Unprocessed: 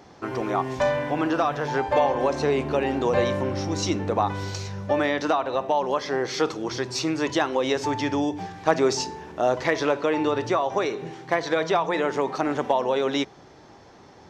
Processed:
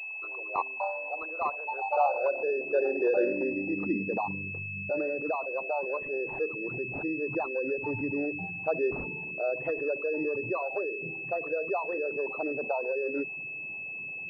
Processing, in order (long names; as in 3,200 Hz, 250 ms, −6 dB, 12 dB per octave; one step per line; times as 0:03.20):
spectral envelope exaggerated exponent 3
high-pass filter sweep 930 Hz → 140 Hz, 0:01.69–0:04.62
switching amplifier with a slow clock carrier 2,600 Hz
level −8.5 dB